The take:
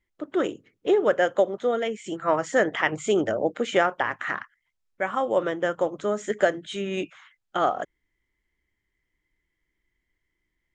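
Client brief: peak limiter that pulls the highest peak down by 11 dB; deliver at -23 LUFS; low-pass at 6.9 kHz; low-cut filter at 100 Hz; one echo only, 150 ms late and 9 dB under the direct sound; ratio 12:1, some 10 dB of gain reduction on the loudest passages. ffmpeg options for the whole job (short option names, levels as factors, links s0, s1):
-af "highpass=100,lowpass=6900,acompressor=threshold=0.0562:ratio=12,alimiter=level_in=1.12:limit=0.0631:level=0:latency=1,volume=0.891,aecho=1:1:150:0.355,volume=3.98"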